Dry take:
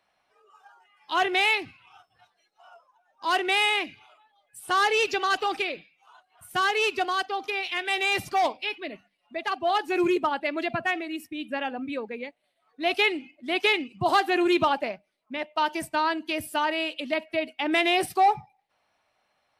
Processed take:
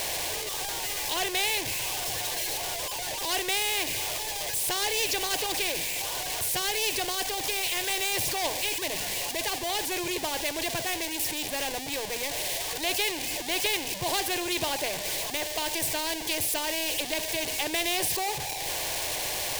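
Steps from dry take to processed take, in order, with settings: zero-crossing step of -30 dBFS; fixed phaser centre 540 Hz, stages 4; spectral compressor 2:1; gain -1 dB

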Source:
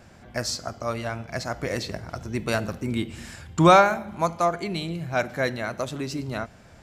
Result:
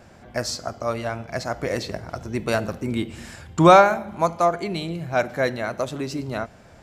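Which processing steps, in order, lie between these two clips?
bell 570 Hz +4 dB 2.1 oct

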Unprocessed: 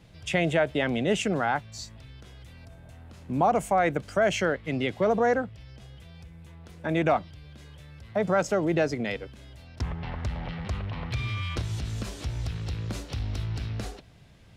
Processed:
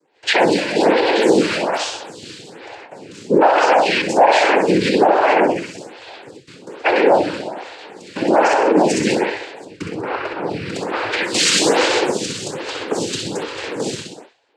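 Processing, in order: 11.34–11.86 sine folder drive 19 dB, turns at -18.5 dBFS; flutter echo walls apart 11 m, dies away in 0.87 s; compressor 4:1, threshold -23 dBFS, peak gain reduction 6.5 dB; hard clip -23.5 dBFS, distortion -14 dB; robotiser 328 Hz; 9.64–10.74 air absorption 290 m; gate with hold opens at -37 dBFS; reverb RT60 0.45 s, pre-delay 3 ms, DRR 8 dB; noise vocoder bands 8; 3.58–4.02 bell 3200 Hz +12.5 dB 2.1 oct; maximiser +21.5 dB; photocell phaser 1.2 Hz; gain -1 dB

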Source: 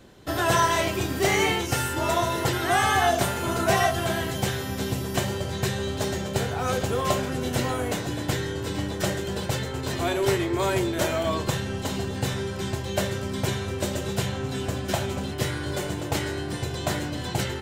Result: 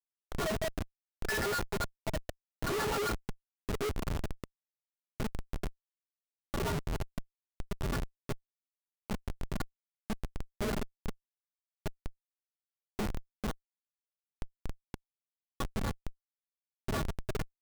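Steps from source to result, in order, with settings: chopper 0.77 Hz, depth 60%, duty 40%; metallic resonator 180 Hz, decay 0.24 s, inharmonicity 0.008; LFO high-pass sine 7.2 Hz 500–1800 Hz; mistuned SSB -350 Hz 240–2900 Hz; Schmitt trigger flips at -35.5 dBFS; gain +8 dB

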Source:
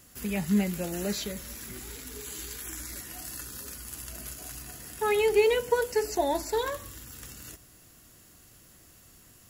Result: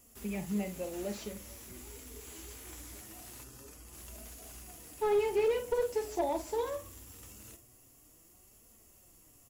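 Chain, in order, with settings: fifteen-band EQ 160 Hz -9 dB, 1600 Hz -11 dB, 4000 Hz -10 dB; flange 0.23 Hz, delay 4.1 ms, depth 9 ms, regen +41%; doubler 49 ms -10 dB; 3.44–3.95 high shelf 7700 Hz -12 dB; slew limiter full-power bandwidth 32 Hz

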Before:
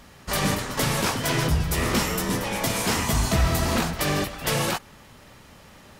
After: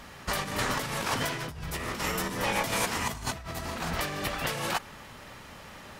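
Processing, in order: high shelf 2400 Hz -10.5 dB; negative-ratio compressor -31 dBFS, ratio -1; tilt shelf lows -5.5 dB, about 850 Hz

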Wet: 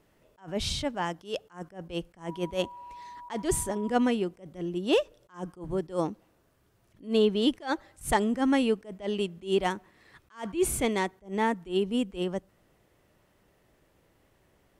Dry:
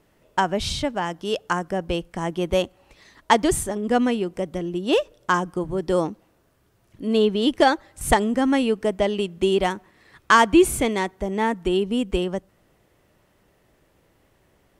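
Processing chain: 2.18–4.1 whine 970 Hz -38 dBFS; attack slew limiter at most 210 dB/s; gain -4 dB

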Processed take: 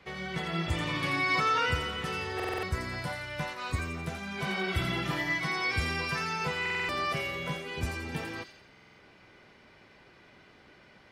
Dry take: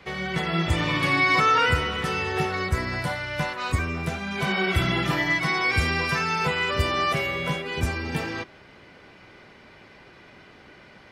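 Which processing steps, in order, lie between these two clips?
thin delay 86 ms, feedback 48%, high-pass 3500 Hz, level -4 dB; stuck buffer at 2.35/6.61/8.71, samples 2048, times 5; gain -7.5 dB

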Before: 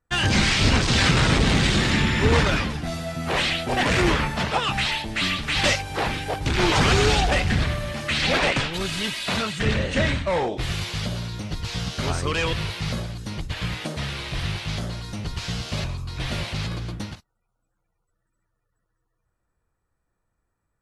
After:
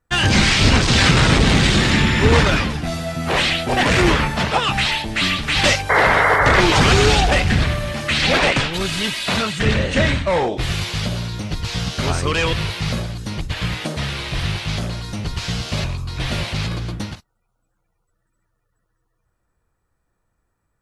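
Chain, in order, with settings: rattling part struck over -24 dBFS, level -31 dBFS; painted sound noise, 5.89–6.61, 390–2200 Hz -20 dBFS; gain +5 dB

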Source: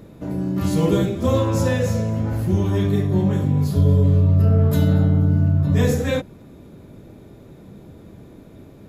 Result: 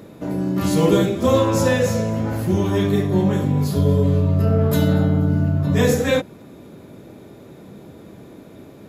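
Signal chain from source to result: HPF 230 Hz 6 dB/oct; gain +5 dB

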